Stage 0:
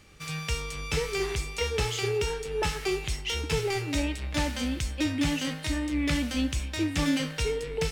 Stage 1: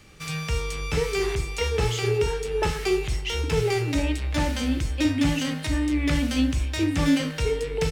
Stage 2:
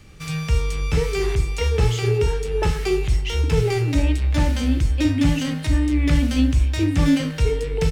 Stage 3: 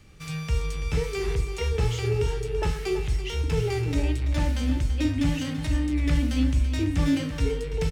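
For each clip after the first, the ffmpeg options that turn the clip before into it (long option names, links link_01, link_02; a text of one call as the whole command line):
ffmpeg -i in.wav -filter_complex "[0:a]acrossover=split=640|1900[link_01][link_02][link_03];[link_01]asplit=2[link_04][link_05];[link_05]adelay=43,volume=-3.5dB[link_06];[link_04][link_06]amix=inputs=2:normalize=0[link_07];[link_03]alimiter=level_in=2dB:limit=-24dB:level=0:latency=1:release=161,volume=-2dB[link_08];[link_07][link_02][link_08]amix=inputs=3:normalize=0,volume=3.5dB" out.wav
ffmpeg -i in.wav -af "lowshelf=frequency=200:gain=9" out.wav
ffmpeg -i in.wav -af "aecho=1:1:334:0.282,volume=-6dB" out.wav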